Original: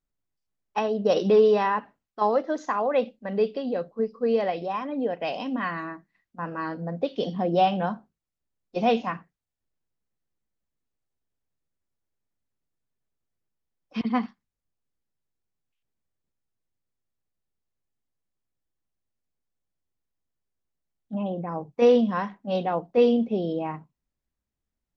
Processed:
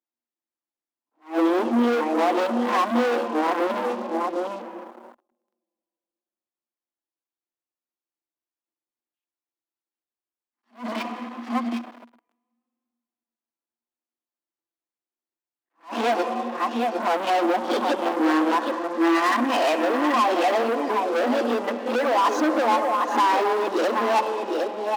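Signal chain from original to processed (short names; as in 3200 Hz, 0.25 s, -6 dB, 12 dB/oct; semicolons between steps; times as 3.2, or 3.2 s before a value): whole clip reversed; compressor 6:1, threshold -32 dBFS, peak gain reduction 17 dB; comb 5.8 ms, depth 43%; echo 0.768 s -9 dB; reverb RT60 2.6 s, pre-delay 64 ms, DRR 12.5 dB; vibrato 0.8 Hz 53 cents; sample leveller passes 5; rippled Chebyshev high-pass 230 Hz, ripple 6 dB; attack slew limiter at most 240 dB/s; gain +6 dB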